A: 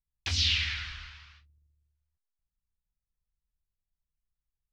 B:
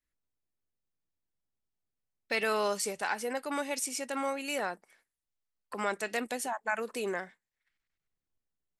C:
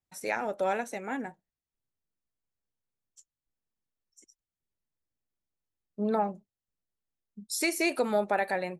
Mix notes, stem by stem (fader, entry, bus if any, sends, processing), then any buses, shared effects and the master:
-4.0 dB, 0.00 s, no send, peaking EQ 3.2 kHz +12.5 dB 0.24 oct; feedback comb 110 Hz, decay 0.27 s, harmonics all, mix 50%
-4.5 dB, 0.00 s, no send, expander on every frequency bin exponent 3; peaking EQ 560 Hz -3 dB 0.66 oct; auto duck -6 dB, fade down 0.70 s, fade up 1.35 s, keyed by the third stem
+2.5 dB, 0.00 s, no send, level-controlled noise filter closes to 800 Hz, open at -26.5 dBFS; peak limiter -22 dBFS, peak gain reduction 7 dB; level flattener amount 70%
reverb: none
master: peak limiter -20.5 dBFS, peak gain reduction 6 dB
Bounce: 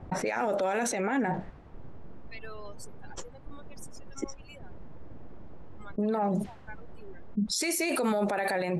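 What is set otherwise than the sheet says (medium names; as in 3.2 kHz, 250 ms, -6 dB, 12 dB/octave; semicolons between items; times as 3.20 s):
stem A: muted; stem C +2.5 dB -> +8.5 dB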